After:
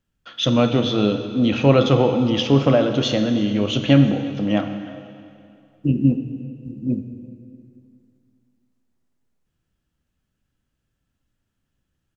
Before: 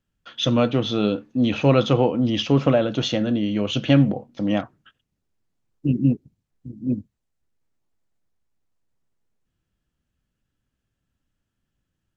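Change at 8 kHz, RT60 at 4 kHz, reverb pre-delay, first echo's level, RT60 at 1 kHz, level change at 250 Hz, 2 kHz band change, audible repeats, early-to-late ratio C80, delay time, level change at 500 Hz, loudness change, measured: can't be measured, 2.2 s, 8 ms, −22.0 dB, 2.4 s, +2.5 dB, +2.5 dB, 2, 8.5 dB, 346 ms, +2.5 dB, +2.5 dB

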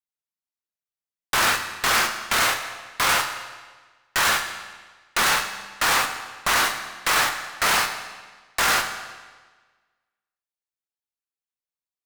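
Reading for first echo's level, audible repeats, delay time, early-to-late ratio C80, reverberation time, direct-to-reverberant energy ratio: no echo audible, no echo audible, no echo audible, 9.5 dB, 1.4 s, 5.5 dB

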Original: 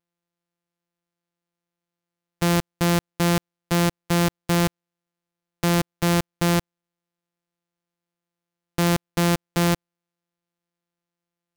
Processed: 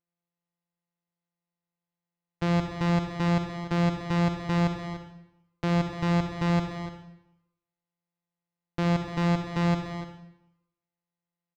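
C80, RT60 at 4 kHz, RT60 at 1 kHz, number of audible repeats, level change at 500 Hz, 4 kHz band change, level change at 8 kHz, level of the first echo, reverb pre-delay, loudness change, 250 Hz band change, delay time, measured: 6.0 dB, 0.75 s, 0.85 s, 2, −5.5 dB, −9.5 dB, below −15 dB, −13.5 dB, 40 ms, −4.5 dB, −3.0 dB, 265 ms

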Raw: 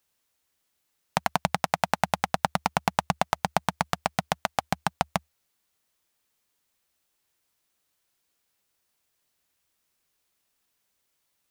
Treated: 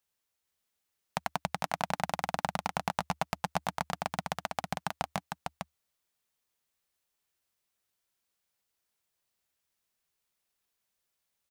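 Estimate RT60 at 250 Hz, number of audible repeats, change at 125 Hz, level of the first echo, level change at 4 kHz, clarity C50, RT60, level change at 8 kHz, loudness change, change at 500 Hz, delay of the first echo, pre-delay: no reverb audible, 1, −6.5 dB, −4.5 dB, −6.5 dB, no reverb audible, no reverb audible, −7.0 dB, −7.0 dB, −7.0 dB, 453 ms, no reverb audible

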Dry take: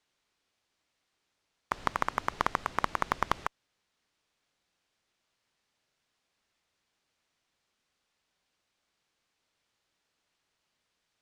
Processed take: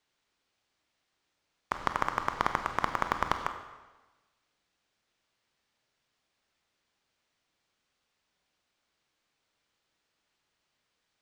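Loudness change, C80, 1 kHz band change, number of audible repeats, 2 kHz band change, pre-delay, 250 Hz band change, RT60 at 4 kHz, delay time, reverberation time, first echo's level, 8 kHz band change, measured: +1.0 dB, 10.5 dB, +1.0 dB, no echo audible, +0.5 dB, 23 ms, +1.0 dB, 1.1 s, no echo audible, 1.2 s, no echo audible, −1.0 dB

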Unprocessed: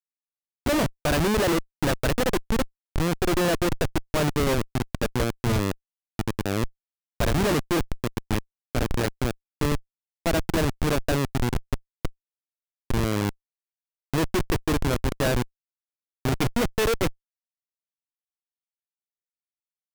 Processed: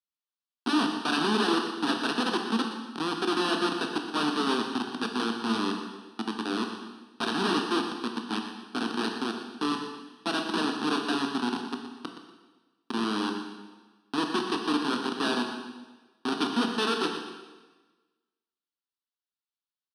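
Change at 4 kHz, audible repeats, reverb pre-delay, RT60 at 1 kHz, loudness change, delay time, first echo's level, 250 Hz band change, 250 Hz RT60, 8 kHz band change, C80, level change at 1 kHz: +2.5 dB, 1, 7 ms, 1.2 s, −3.0 dB, 121 ms, −10.5 dB, −1.0 dB, 1.3 s, −8.5 dB, 6.0 dB, +1.0 dB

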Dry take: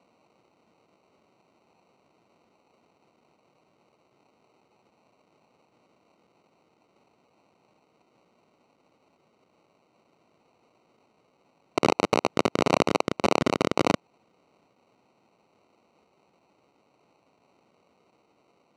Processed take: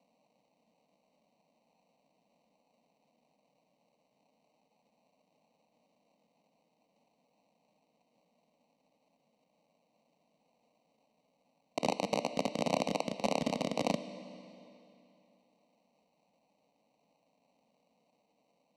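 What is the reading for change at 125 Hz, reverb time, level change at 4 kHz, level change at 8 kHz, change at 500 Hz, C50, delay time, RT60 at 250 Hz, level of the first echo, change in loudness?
−9.5 dB, 2.9 s, −8.0 dB, −7.0 dB, −9.0 dB, 12.0 dB, no echo audible, 2.9 s, no echo audible, −9.0 dB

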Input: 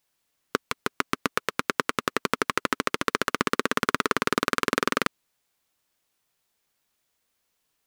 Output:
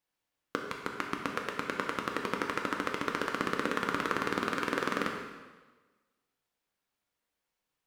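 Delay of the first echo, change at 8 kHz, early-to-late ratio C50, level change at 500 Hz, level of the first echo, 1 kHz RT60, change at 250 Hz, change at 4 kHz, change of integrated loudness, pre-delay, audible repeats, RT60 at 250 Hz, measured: no echo audible, −12.0 dB, 4.0 dB, −5.5 dB, no echo audible, 1.3 s, −5.0 dB, −9.0 dB, −6.5 dB, 3 ms, no echo audible, 1.3 s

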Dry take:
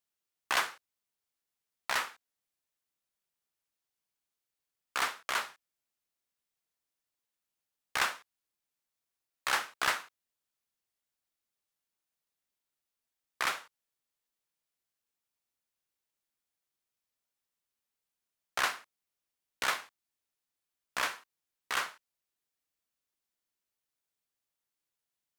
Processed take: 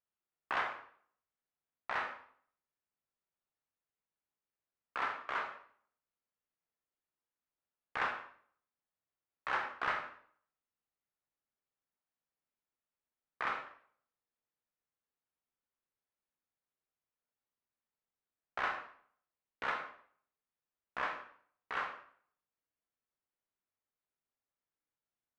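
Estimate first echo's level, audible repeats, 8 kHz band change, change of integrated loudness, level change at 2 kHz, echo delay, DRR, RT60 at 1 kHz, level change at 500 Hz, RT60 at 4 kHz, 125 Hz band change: no echo audible, no echo audible, below −25 dB, −5.5 dB, −5.0 dB, no echo audible, 2.5 dB, 0.55 s, −1.5 dB, 0.45 s, −1.5 dB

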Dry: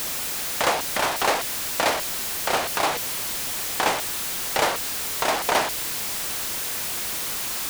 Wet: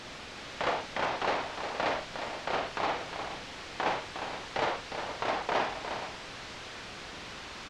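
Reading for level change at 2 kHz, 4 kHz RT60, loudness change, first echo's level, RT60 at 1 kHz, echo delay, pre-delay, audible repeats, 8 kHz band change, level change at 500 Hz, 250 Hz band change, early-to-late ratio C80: −8.0 dB, no reverb audible, −10.5 dB, −6.5 dB, no reverb audible, 48 ms, no reverb audible, 3, −23.5 dB, −6.5 dB, −6.0 dB, no reverb audible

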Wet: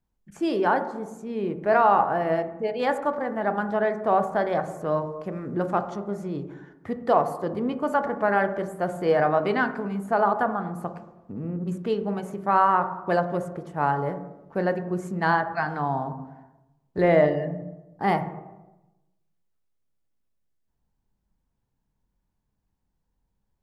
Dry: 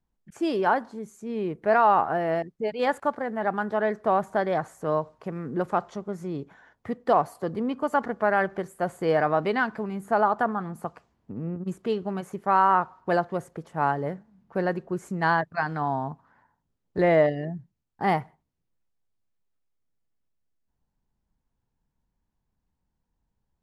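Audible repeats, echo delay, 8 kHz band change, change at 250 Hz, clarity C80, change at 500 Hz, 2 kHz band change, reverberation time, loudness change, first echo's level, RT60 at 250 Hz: no echo audible, no echo audible, can't be measured, +1.5 dB, 16.5 dB, +1.5 dB, +0.5 dB, 1.0 s, +1.0 dB, no echo audible, 1.1 s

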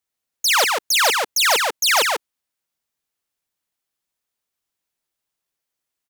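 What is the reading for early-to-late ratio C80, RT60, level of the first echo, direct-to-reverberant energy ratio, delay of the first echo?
no reverb audible, no reverb audible, −3.5 dB, no reverb audible, 143 ms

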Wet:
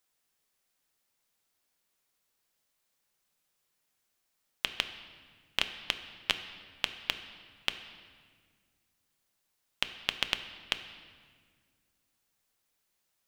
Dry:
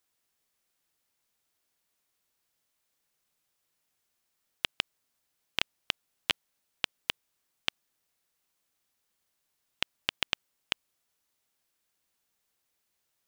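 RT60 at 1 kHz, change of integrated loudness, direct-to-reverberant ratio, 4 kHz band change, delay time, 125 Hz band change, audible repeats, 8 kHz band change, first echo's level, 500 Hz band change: 1.6 s, +0.5 dB, 8.5 dB, +0.5 dB, no echo audible, −0.5 dB, no echo audible, +0.5 dB, no echo audible, +0.5 dB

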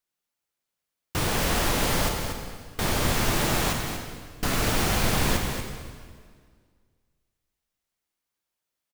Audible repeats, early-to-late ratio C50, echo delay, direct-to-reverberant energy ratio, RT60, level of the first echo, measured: 1, 3.0 dB, 237 ms, 2.0 dB, 1.8 s, −7.5 dB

